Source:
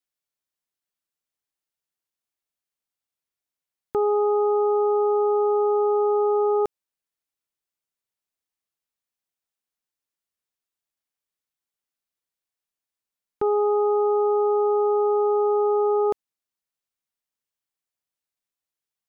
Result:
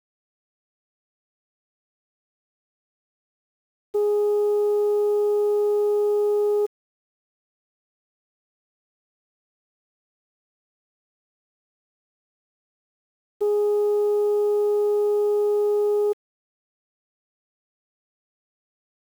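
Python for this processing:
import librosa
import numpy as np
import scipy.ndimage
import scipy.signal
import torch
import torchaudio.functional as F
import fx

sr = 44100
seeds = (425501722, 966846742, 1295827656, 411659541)

y = fx.spec_expand(x, sr, power=2.1)
y = fx.quant_dither(y, sr, seeds[0], bits=8, dither='none')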